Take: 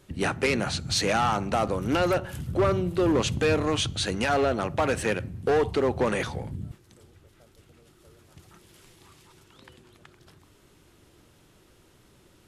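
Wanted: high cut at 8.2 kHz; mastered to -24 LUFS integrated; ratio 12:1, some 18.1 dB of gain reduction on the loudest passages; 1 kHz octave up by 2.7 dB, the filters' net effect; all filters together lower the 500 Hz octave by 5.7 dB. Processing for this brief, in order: low-pass 8.2 kHz; peaking EQ 500 Hz -9 dB; peaking EQ 1 kHz +7 dB; compression 12:1, threshold -37 dBFS; trim +17 dB

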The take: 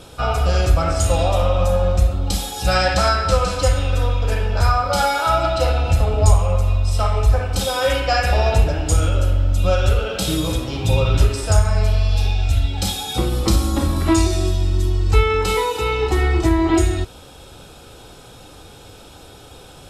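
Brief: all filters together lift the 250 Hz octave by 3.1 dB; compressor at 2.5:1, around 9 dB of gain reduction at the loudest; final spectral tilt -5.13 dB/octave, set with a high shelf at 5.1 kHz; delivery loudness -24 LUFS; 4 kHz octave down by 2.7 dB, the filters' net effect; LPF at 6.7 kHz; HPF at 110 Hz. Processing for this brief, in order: high-pass 110 Hz; low-pass 6.7 kHz; peaking EQ 250 Hz +5 dB; peaking EQ 4 kHz -6.5 dB; treble shelf 5.1 kHz +7.5 dB; compression 2.5:1, threshold -23 dBFS; trim +1.5 dB

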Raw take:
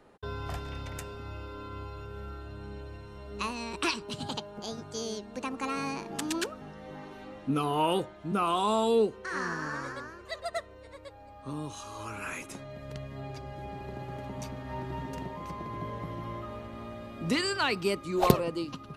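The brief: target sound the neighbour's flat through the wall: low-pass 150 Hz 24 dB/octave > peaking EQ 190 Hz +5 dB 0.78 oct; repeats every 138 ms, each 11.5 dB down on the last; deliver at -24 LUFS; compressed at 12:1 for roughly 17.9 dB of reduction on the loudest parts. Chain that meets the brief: compression 12:1, threshold -33 dBFS; low-pass 150 Hz 24 dB/octave; peaking EQ 190 Hz +5 dB 0.78 oct; feedback delay 138 ms, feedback 27%, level -11.5 dB; trim +23 dB

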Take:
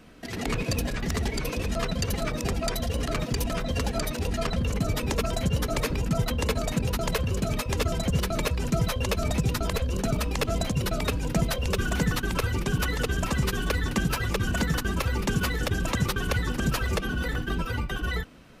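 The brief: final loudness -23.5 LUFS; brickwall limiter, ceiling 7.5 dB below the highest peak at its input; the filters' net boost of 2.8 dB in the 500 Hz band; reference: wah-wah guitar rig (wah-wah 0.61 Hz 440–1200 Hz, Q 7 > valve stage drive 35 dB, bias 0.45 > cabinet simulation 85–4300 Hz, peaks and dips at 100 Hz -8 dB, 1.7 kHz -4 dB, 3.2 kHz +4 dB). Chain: peaking EQ 500 Hz +3.5 dB; peak limiter -20 dBFS; wah-wah 0.61 Hz 440–1200 Hz, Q 7; valve stage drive 35 dB, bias 0.45; cabinet simulation 85–4300 Hz, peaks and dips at 100 Hz -8 dB, 1.7 kHz -4 dB, 3.2 kHz +4 dB; trim +23.5 dB

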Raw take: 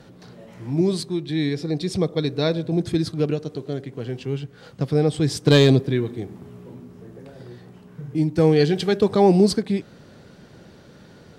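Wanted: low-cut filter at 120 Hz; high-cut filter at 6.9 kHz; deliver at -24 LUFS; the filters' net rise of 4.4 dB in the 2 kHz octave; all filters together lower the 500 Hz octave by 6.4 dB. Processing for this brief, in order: high-pass 120 Hz; low-pass 6.9 kHz; peaking EQ 500 Hz -8.5 dB; peaking EQ 2 kHz +6 dB; trim +0.5 dB

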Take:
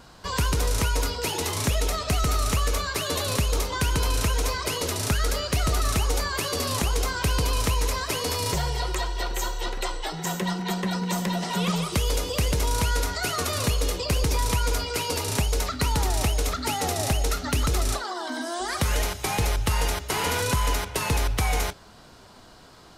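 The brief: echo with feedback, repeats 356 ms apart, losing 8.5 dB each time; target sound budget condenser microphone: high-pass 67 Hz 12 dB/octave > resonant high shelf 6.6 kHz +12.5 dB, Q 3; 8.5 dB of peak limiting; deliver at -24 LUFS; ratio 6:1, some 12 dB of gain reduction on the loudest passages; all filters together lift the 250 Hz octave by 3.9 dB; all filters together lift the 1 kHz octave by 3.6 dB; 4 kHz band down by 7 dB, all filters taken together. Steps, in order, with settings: peaking EQ 250 Hz +5.5 dB; peaking EQ 1 kHz +4.5 dB; peaking EQ 4 kHz -4 dB; compression 6:1, threshold -32 dBFS; peak limiter -28 dBFS; high-pass 67 Hz 12 dB/octave; resonant high shelf 6.6 kHz +12.5 dB, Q 3; feedback delay 356 ms, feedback 38%, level -8.5 dB; trim +5.5 dB

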